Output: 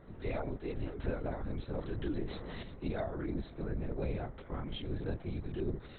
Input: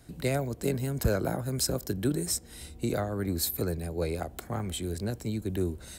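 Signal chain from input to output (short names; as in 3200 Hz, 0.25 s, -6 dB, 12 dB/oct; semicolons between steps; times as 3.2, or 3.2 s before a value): 3.33–3.83 high shelf 2500 Hz -8.5 dB; limiter -21 dBFS, peak gain reduction 6.5 dB; chorus voices 6, 0.41 Hz, delay 25 ms, depth 1.7 ms; buzz 400 Hz, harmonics 5, -55 dBFS -8 dB/oct; LPC vocoder at 8 kHz whisper; 1.73–2.63 fast leveller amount 50%; gain -3 dB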